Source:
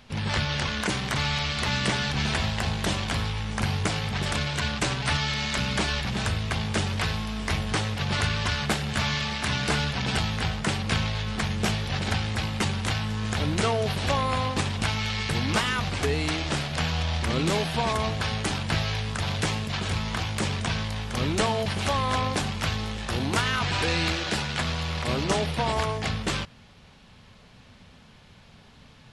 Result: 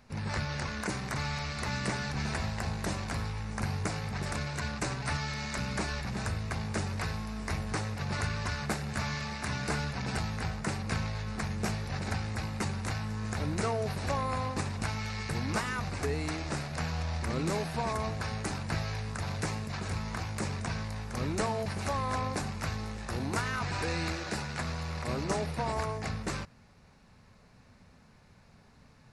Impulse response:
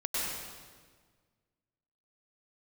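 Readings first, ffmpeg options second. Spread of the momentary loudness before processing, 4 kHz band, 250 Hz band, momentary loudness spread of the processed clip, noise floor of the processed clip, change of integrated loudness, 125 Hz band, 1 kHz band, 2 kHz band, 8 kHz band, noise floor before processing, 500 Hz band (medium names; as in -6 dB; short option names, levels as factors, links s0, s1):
4 LU, -12.5 dB, -6.0 dB, 4 LU, -59 dBFS, -7.5 dB, -6.0 dB, -6.5 dB, -8.0 dB, -6.5 dB, -52 dBFS, -6.0 dB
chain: -af "equalizer=f=3200:w=3.1:g=-14.5,volume=0.501"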